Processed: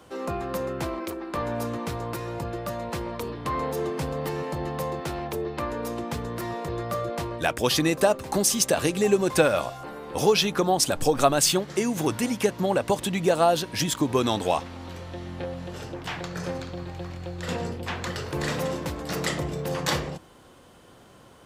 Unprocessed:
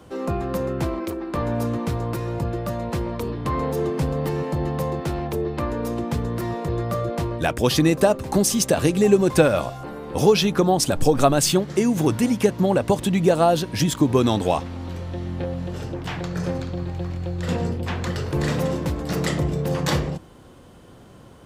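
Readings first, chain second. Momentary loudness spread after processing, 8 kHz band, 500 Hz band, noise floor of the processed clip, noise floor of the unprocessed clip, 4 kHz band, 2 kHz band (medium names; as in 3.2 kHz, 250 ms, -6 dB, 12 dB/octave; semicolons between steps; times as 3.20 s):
13 LU, 0.0 dB, -4.0 dB, -52 dBFS, -46 dBFS, 0.0 dB, -0.5 dB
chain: bass shelf 390 Hz -9.5 dB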